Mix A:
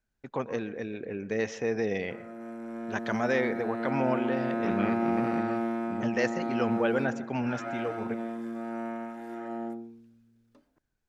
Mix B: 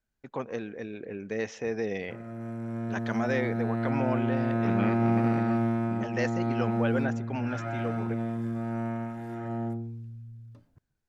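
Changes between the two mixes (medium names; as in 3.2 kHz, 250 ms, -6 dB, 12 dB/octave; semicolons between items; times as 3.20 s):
first voice: send -11.5 dB; background: remove high-pass 240 Hz 24 dB/octave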